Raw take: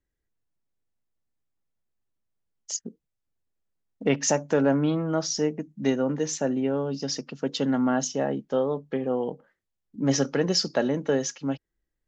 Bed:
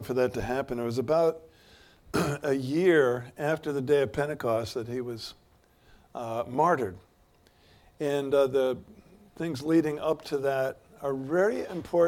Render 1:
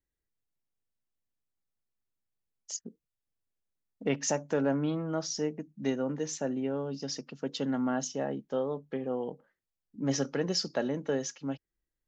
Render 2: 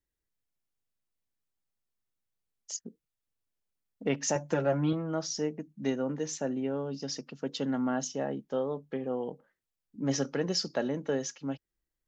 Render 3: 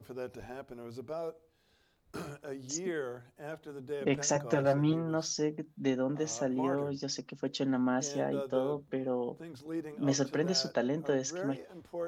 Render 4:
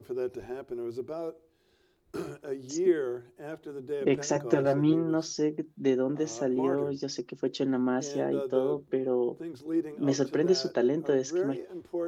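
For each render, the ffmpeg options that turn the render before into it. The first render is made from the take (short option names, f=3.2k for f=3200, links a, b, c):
-af "volume=-6.5dB"
-filter_complex "[0:a]asettb=1/sr,asplit=3[a][b][c];[a]atrim=end=4.354[d];[b]atrim=start=4.35:end=4.93,asetpts=PTS-STARTPTS,afade=t=in:d=0.004:c=qsin,afade=t=out:st=0.576:d=0.004:c=qsin,aecho=1:1:5.7:0.92,atrim=end_sample=25578[e];[c]atrim=start=4.926[f];[d][e]acrossfade=d=0.004:c1=hsin:c2=qsin[g];[g][f]acrossfade=d=0.004:c1=qsin:c2=hsin"
-filter_complex "[1:a]volume=-14.5dB[a];[0:a][a]amix=inputs=2:normalize=0"
-filter_complex "[0:a]acrossover=split=6500[a][b];[b]acompressor=threshold=-49dB:ratio=4:attack=1:release=60[c];[a][c]amix=inputs=2:normalize=0,equalizer=f=360:w=4.4:g=15"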